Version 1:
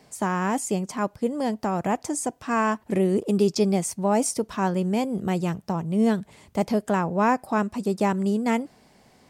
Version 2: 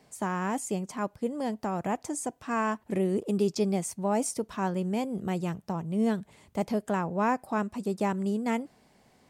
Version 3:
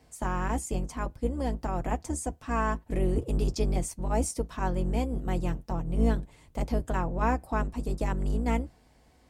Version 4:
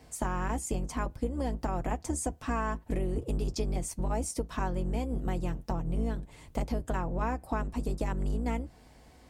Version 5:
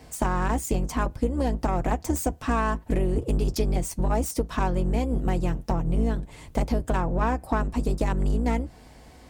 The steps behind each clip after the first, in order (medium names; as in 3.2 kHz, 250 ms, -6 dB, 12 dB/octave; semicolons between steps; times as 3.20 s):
peaking EQ 5.1 kHz -2.5 dB 0.44 oct; trim -5.5 dB
octave divider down 2 oct, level +3 dB; comb of notches 200 Hz
compression, threshold -33 dBFS, peak gain reduction 13 dB; trim +5 dB
self-modulated delay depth 0.09 ms; trim +7 dB